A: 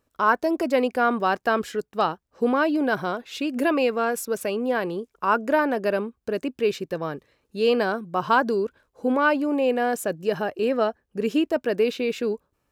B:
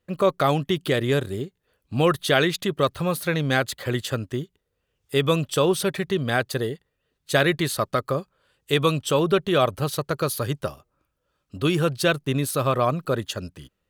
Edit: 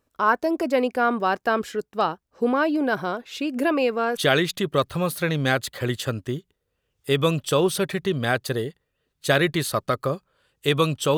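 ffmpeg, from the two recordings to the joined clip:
-filter_complex "[0:a]apad=whole_dur=11.17,atrim=end=11.17,atrim=end=4.172[a];[1:a]atrim=start=2.218:end=9.22[b];[a][b]acrossfade=d=0.004:c1=hsin:c2=hsin"

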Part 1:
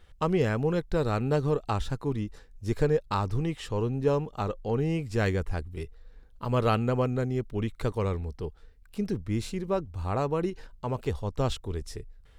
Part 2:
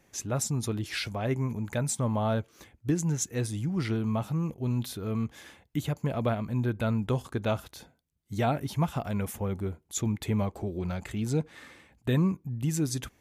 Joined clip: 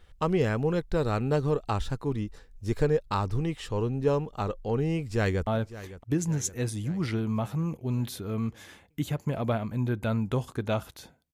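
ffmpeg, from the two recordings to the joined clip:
-filter_complex "[0:a]apad=whole_dur=11.33,atrim=end=11.33,atrim=end=5.472[a];[1:a]atrim=start=2.238:end=8.1[b];[a][b]acrossfade=d=0.004:c1=hsin:c2=hsin,asplit=2[c][d];[d]afade=t=in:st=4.98:d=0.01,afade=t=out:st=5.47:d=0.01,aecho=0:1:560|1120|1680|2240|2800|3360|3920:0.16788|0.109122|0.0709295|0.0461042|0.0299677|0.019479|0.0126614[e];[c][e]amix=inputs=2:normalize=0"

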